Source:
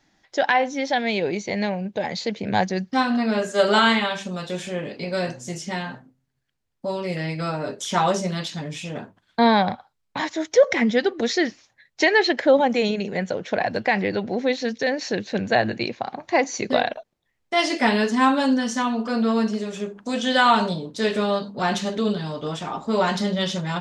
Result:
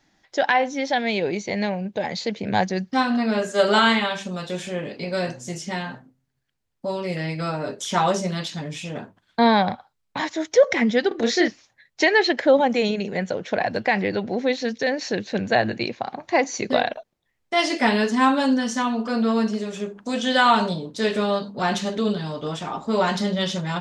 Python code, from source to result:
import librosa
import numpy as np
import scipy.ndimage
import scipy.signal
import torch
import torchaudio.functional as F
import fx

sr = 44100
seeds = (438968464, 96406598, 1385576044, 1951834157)

y = fx.doubler(x, sr, ms=31.0, db=-3.5, at=(11.08, 11.48))